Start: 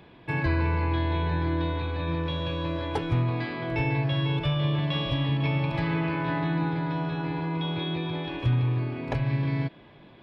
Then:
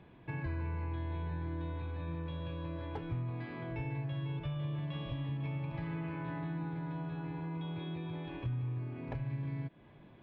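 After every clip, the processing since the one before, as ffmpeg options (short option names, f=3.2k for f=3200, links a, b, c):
-af "bass=f=250:g=5,treble=f=4k:g=-14,acompressor=threshold=-33dB:ratio=2,volume=-8dB"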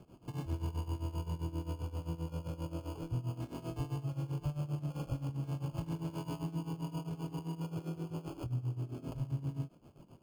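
-filter_complex "[0:a]tremolo=f=7.6:d=0.83,acrossover=split=640[a][b];[b]acrusher=samples=23:mix=1:aa=0.000001[c];[a][c]amix=inputs=2:normalize=0,volume=3.5dB"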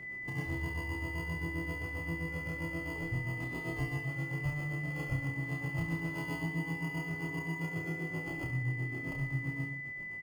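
-filter_complex "[0:a]aeval=exprs='val(0)+0.00562*sin(2*PI*2000*n/s)':c=same,asplit=2[a][b];[b]aecho=0:1:30|69|119.7|185.6|271.3:0.631|0.398|0.251|0.158|0.1[c];[a][c]amix=inputs=2:normalize=0"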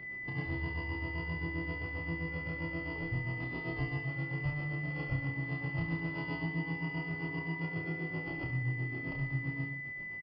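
-af "aresample=11025,aresample=44100"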